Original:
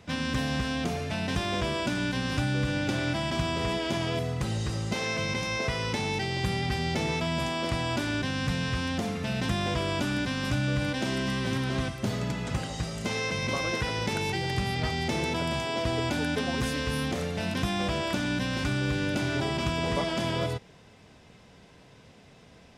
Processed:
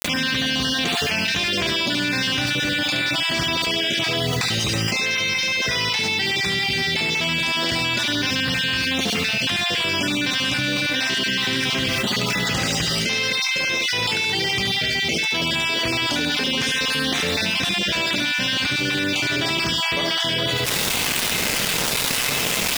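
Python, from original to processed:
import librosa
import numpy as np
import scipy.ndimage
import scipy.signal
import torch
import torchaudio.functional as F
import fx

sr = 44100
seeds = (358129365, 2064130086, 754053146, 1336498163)

p1 = fx.spec_dropout(x, sr, seeds[0], share_pct=32)
p2 = fx.weighting(p1, sr, curve='D')
p3 = fx.quant_dither(p2, sr, seeds[1], bits=8, dither='none')
p4 = p3 + fx.echo_single(p3, sr, ms=72, db=-6.5, dry=0)
y = fx.env_flatten(p4, sr, amount_pct=100)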